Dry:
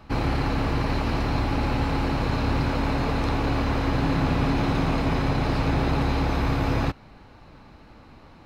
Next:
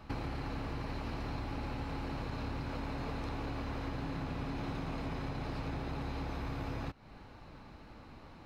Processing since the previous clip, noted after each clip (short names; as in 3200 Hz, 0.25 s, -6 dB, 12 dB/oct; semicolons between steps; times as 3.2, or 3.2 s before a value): compressor 6:1, threshold -32 dBFS, peak gain reduction 13 dB; gain -4 dB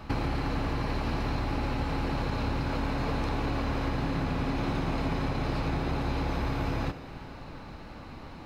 Schroeder reverb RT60 2.9 s, combs from 31 ms, DRR 10 dB; gain +8.5 dB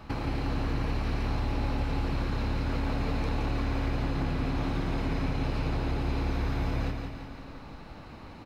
feedback echo 0.171 s, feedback 48%, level -5.5 dB; gain -3 dB